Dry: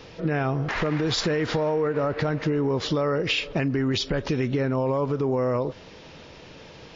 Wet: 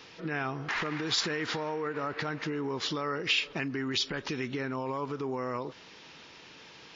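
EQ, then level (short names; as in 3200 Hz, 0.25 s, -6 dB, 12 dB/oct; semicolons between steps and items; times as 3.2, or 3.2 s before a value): low shelf 92 Hz -11.5 dB; low shelf 260 Hz -10.5 dB; bell 570 Hz -10 dB 0.79 oct; -1.5 dB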